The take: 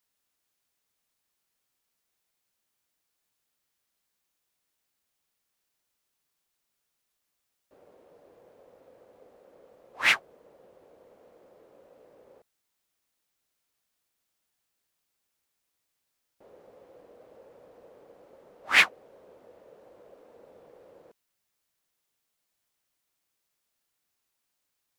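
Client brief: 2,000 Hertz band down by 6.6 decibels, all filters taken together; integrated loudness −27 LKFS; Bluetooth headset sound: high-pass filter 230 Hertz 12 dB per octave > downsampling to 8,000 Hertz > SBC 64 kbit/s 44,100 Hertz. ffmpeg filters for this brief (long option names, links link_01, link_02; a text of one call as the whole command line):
ffmpeg -i in.wav -af "highpass=230,equalizer=frequency=2000:width_type=o:gain=-8,aresample=8000,aresample=44100,volume=2dB" -ar 44100 -c:a sbc -b:a 64k out.sbc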